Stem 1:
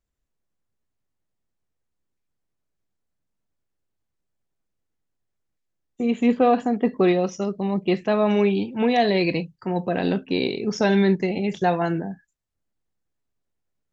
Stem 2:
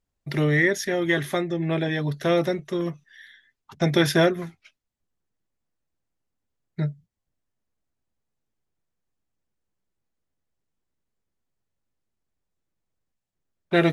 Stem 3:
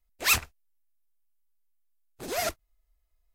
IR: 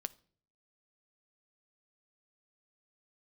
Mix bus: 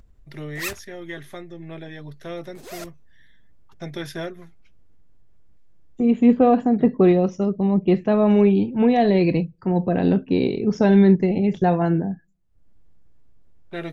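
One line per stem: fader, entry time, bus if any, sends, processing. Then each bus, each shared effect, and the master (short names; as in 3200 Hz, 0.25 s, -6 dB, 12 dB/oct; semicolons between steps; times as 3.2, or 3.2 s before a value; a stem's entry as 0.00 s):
-2.0 dB, 0.00 s, send -18.5 dB, tilt -3 dB/oct; upward compressor, threshold -35 dBFS
-12.0 dB, 0.00 s, no send, dry
-8.0 dB, 0.35 s, no send, dry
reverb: on, RT60 0.50 s, pre-delay 7 ms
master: dry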